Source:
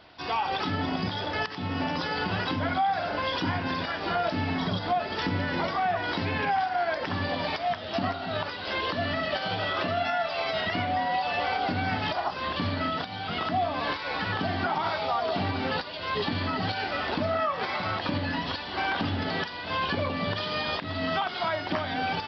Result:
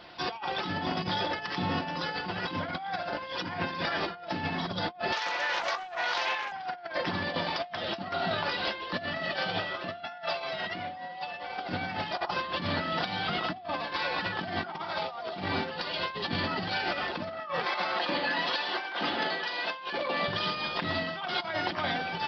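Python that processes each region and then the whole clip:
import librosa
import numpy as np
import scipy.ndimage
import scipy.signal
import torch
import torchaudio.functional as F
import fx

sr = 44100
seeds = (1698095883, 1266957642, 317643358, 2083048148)

y = fx.chain(x, sr, fx.highpass(hz=620.0, slope=24),
    fx.doppler_dist(depth_ms=0.2), at=(5.12, 6.52))
y = fx.chain(y, sr, fx.highpass(hz=360.0, slope=12),
    fx.resample_bad(factor=4, down='none', up='filtered'), at=(17.65, 20.28))
y = fx.low_shelf(y, sr, hz=180.0, db=-4.0)
y = y + 0.45 * np.pad(y, (int(5.7 * sr / 1000.0), 0))[:len(y)]
y = fx.over_compress(y, sr, threshold_db=-32.0, ratio=-0.5)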